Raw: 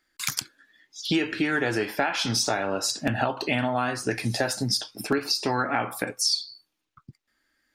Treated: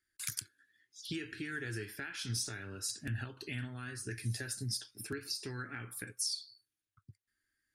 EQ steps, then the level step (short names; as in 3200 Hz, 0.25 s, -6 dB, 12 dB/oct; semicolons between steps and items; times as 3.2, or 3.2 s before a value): fifteen-band EQ 100 Hz +12 dB, 400 Hz +11 dB, 1600 Hz +10 dB, 10000 Hz +11 dB; dynamic EQ 860 Hz, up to -5 dB, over -31 dBFS, Q 0.82; passive tone stack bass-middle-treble 6-0-2; 0.0 dB